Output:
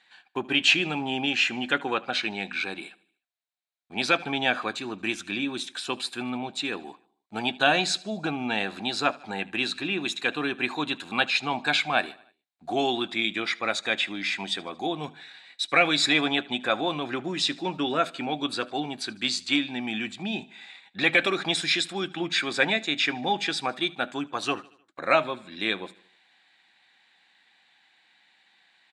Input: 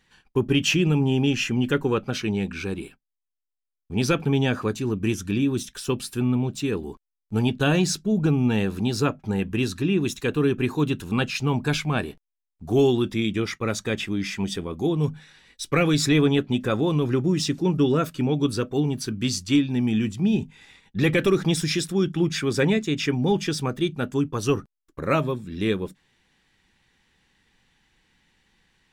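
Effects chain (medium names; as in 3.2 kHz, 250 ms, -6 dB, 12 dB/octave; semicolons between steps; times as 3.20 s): cabinet simulation 400–8500 Hz, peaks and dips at 430 Hz -10 dB, 720 Hz +10 dB, 1.6 kHz +5 dB, 2.3 kHz +6 dB, 3.9 kHz +10 dB, 5.8 kHz -9 dB; on a send: feedback delay 76 ms, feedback 53%, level -22.5 dB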